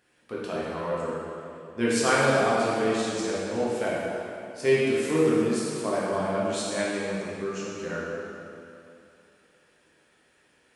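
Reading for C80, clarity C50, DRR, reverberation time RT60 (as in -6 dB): -1.0 dB, -3.0 dB, -7.5 dB, 2.7 s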